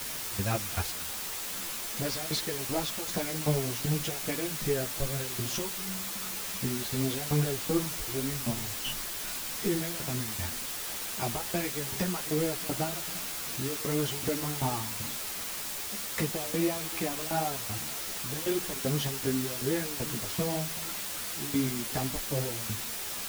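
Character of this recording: tremolo saw down 2.6 Hz, depth 95%; a quantiser's noise floor 6-bit, dither triangular; a shimmering, thickened sound

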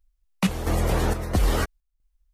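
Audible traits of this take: chopped level 1.5 Hz, depth 60%, duty 70%

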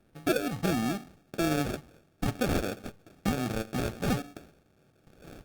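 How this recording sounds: aliases and images of a low sample rate 1000 Hz, jitter 0%; Opus

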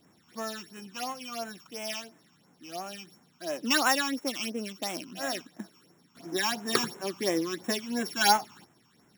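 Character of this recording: a buzz of ramps at a fixed pitch in blocks of 8 samples; phasing stages 8, 2.9 Hz, lowest notch 520–4500 Hz

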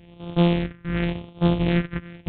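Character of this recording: a buzz of ramps at a fixed pitch in blocks of 256 samples; phasing stages 4, 0.9 Hz, lowest notch 740–1700 Hz; G.726

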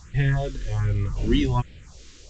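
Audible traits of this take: a quantiser's noise floor 8-bit, dither triangular; phasing stages 4, 1.3 Hz, lowest notch 110–1100 Hz; µ-law

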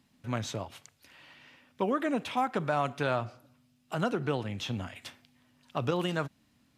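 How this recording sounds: noise floor -69 dBFS; spectral tilt -5.0 dB/oct

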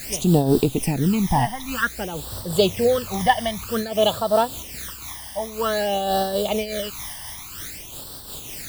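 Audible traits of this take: a quantiser's noise floor 6-bit, dither triangular; phasing stages 12, 0.52 Hz, lowest notch 420–2300 Hz; noise-modulated level

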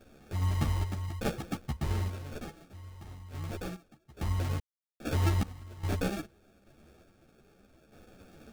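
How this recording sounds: random-step tremolo 2.4 Hz, depth 100%; aliases and images of a low sample rate 1000 Hz, jitter 0%; a shimmering, thickened sound

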